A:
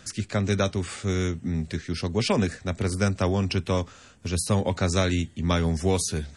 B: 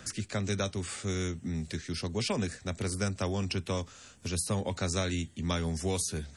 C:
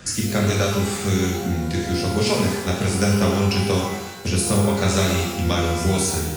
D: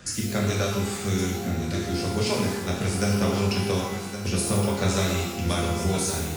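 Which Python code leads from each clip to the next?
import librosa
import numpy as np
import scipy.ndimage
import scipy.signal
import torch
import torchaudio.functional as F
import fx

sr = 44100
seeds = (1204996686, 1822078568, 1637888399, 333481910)

y1 = fx.high_shelf(x, sr, hz=5100.0, db=8.5)
y1 = fx.band_squash(y1, sr, depth_pct=40)
y1 = y1 * 10.0 ** (-8.0 / 20.0)
y2 = fx.transient(y1, sr, attack_db=5, sustain_db=0)
y2 = fx.rev_shimmer(y2, sr, seeds[0], rt60_s=1.0, semitones=12, shimmer_db=-8, drr_db=-3.0)
y2 = y2 * 10.0 ** (5.0 / 20.0)
y3 = y2 + 10.0 ** (-10.5 / 20.0) * np.pad(y2, (int(1116 * sr / 1000.0), 0))[:len(y2)]
y3 = y3 * 10.0 ** (-5.0 / 20.0)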